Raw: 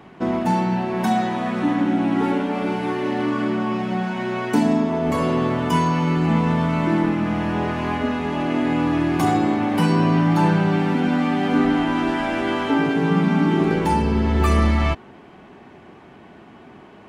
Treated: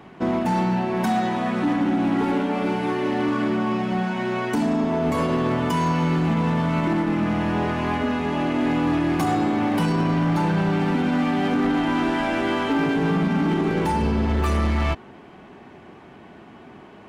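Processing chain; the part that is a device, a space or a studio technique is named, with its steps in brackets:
limiter into clipper (brickwall limiter −12 dBFS, peak gain reduction 6.5 dB; hard clipping −16.5 dBFS, distortion −17 dB)

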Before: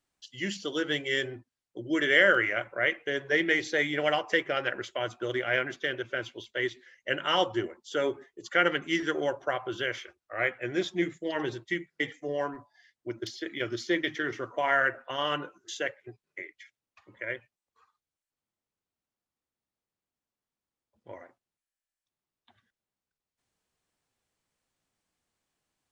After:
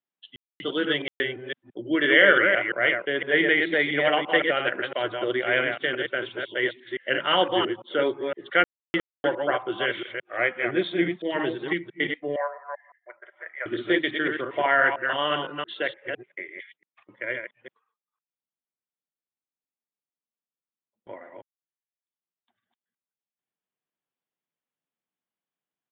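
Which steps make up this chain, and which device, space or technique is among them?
delay that plays each chunk backwards 170 ms, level −4.5 dB
call with lost packets (high-pass filter 140 Hz 24 dB per octave; downsampling to 8,000 Hz; dropped packets of 60 ms bursts)
noise gate −57 dBFS, range −16 dB
0:12.36–0:13.66: elliptic band-pass filter 590–2,000 Hz, stop band 40 dB
level +4 dB

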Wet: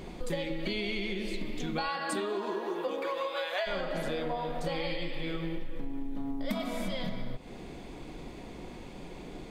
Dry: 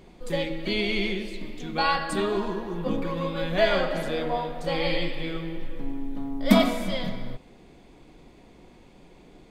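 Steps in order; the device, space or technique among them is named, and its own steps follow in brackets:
0:01.88–0:03.66: high-pass filter 170 Hz → 660 Hz 24 dB per octave
serial compression, leveller first (downward compressor 2 to 1, threshold −28 dBFS, peak gain reduction 9.5 dB; downward compressor 6 to 1, threshold −38 dBFS, peak gain reduction 17 dB)
level +7.5 dB

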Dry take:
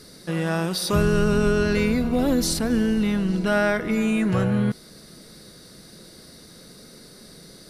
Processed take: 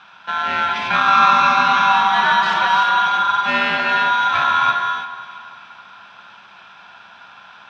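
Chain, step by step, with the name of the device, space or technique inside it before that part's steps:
ring modulator pedal into a guitar cabinet (ring modulator with a square carrier 1,200 Hz; loudspeaker in its box 100–3,800 Hz, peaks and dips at 190 Hz +10 dB, 310 Hz −5 dB, 470 Hz −6 dB, 920 Hz +3 dB, 1,400 Hz +7 dB, 2,400 Hz +8 dB)
0:01.07–0:02.83: comb filter 5.2 ms, depth 85%
delay that swaps between a low-pass and a high-pass 169 ms, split 1,500 Hz, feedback 65%, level −11.5 dB
reverb whose tail is shaped and stops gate 350 ms rising, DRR 2 dB
level −1 dB

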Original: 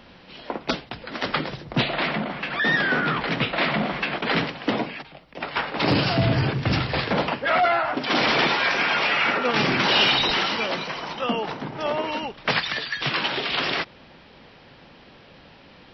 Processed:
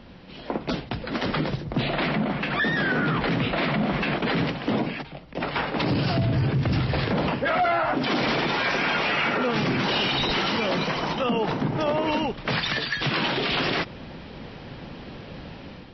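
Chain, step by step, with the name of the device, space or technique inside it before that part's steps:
low-shelf EQ 420 Hz +10 dB
low-bitrate web radio (automatic gain control gain up to 8 dB; brickwall limiter −12.5 dBFS, peak gain reduction 11 dB; level −3 dB; MP3 40 kbit/s 32,000 Hz)

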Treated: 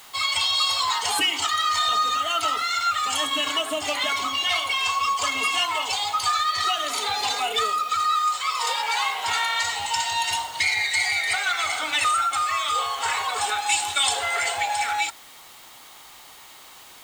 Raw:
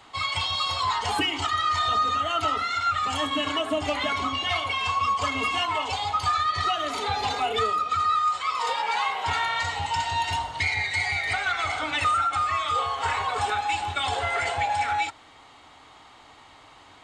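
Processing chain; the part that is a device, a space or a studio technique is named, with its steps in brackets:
0:13.66–0:14.13: high-shelf EQ 5,500 Hz +10 dB
turntable without a phono preamp (RIAA equalisation recording; white noise bed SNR 25 dB)

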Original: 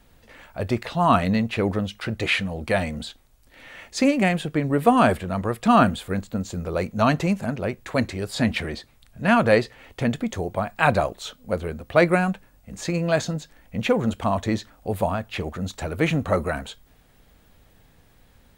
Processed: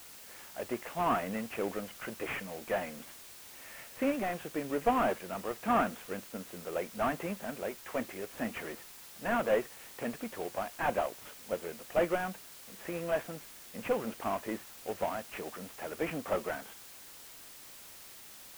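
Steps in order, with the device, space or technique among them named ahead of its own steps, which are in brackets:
army field radio (band-pass filter 320–2,800 Hz; variable-slope delta modulation 16 kbit/s; white noise bed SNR 15 dB)
level −7.5 dB

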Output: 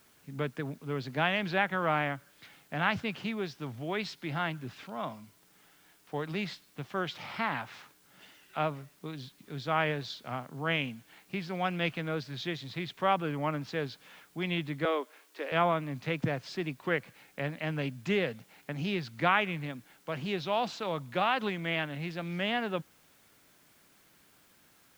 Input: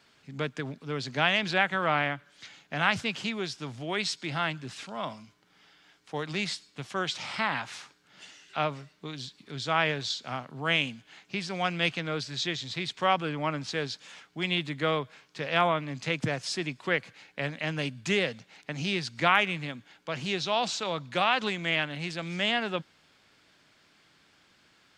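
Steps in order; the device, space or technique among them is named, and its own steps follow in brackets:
cassette deck with a dirty head (head-to-tape spacing loss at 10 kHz 23 dB; tape wow and flutter; white noise bed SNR 31 dB)
0:14.85–0:15.52: Butterworth high-pass 270 Hz 48 dB per octave

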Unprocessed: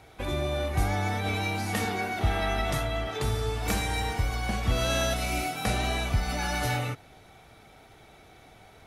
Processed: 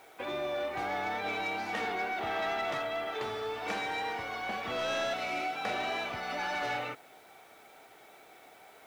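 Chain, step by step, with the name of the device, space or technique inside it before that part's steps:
tape answering machine (band-pass filter 390–3,200 Hz; soft clipping −26 dBFS, distortion −17 dB; tape wow and flutter 18 cents; white noise bed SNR 30 dB)

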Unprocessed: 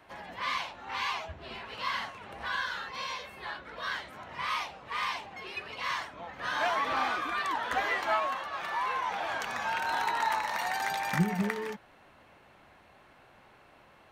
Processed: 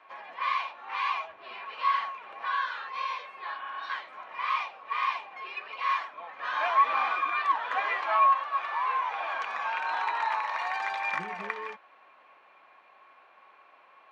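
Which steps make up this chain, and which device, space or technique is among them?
0:03.60–0:03.87: healed spectral selection 230–3,600 Hz before
0:08.82–0:09.34: high-pass filter 170 Hz
tin-can telephone (band-pass filter 570–3,200 Hz; hollow resonant body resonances 1,100/2,400 Hz, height 14 dB, ringing for 70 ms)

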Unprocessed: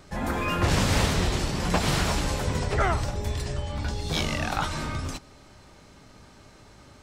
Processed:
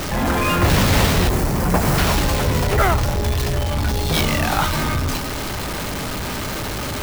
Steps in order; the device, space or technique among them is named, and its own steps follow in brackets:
early CD player with a faulty converter (converter with a step at zero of −25 dBFS; converter with an unsteady clock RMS 0.024 ms)
0:01.29–0:01.98: parametric band 3,500 Hz −10.5 dB 1.3 octaves
level +5 dB

